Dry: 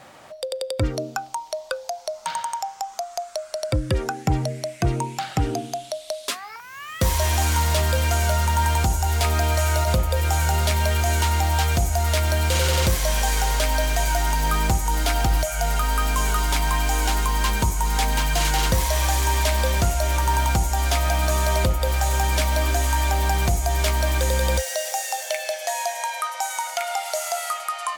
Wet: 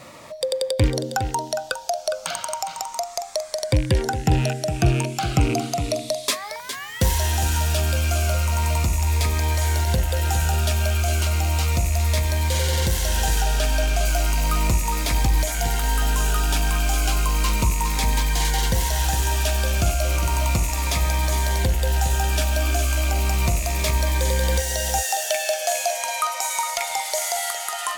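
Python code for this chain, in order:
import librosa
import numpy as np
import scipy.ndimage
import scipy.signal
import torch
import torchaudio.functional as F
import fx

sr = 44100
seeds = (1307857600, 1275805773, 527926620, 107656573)

p1 = fx.rattle_buzz(x, sr, strikes_db=-28.0, level_db=-22.0)
p2 = 10.0 ** (-18.5 / 20.0) * np.tanh(p1 / 10.0 ** (-18.5 / 20.0))
p3 = p1 + (p2 * 10.0 ** (-3.0 / 20.0))
p4 = fx.high_shelf(p3, sr, hz=7700.0, db=-7.0, at=(13.41, 14.05))
p5 = p4 + fx.echo_single(p4, sr, ms=410, db=-9.0, dry=0)
p6 = fx.rider(p5, sr, range_db=4, speed_s=0.5)
p7 = fx.notch_cascade(p6, sr, direction='falling', hz=0.34)
y = p7 * 10.0 ** (-2.5 / 20.0)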